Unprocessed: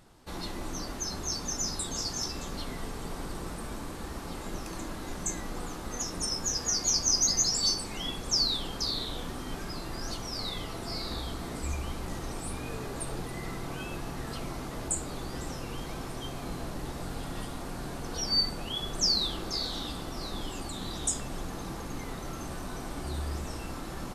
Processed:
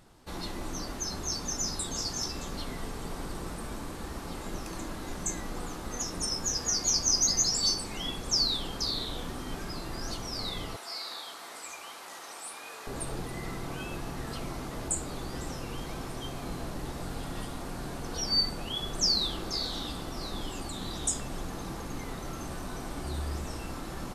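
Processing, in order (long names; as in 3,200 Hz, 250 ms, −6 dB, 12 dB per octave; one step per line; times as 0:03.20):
0:10.76–0:12.87: high-pass filter 790 Hz 12 dB per octave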